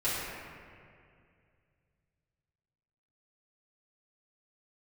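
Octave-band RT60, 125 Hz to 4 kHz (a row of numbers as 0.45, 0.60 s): 3.4, 2.6, 2.5, 2.1, 2.2, 1.5 s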